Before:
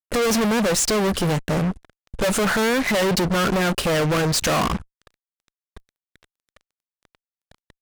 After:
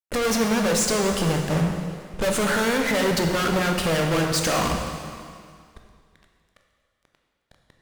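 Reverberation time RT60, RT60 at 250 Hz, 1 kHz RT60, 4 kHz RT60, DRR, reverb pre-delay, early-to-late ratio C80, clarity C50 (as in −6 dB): 2.2 s, 2.2 s, 2.2 s, 2.1 s, 2.5 dB, 8 ms, 5.5 dB, 4.0 dB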